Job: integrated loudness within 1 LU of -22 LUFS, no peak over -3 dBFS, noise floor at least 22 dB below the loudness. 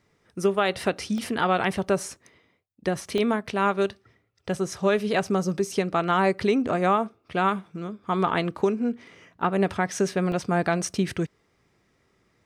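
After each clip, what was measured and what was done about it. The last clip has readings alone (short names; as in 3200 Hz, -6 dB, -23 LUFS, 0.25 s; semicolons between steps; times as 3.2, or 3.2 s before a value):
dropouts 3; longest dropout 1.4 ms; loudness -25.5 LUFS; peak -10.5 dBFS; loudness target -22.0 LUFS
-> interpolate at 1.18/3.18/10.32, 1.4 ms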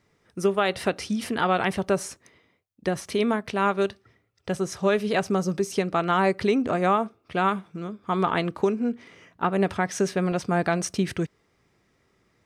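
dropouts 0; loudness -25.5 LUFS; peak -10.5 dBFS; loudness target -22.0 LUFS
-> gain +3.5 dB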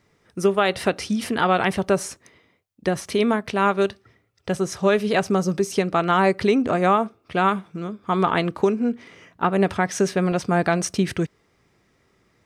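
loudness -22.0 LUFS; peak -7.0 dBFS; noise floor -65 dBFS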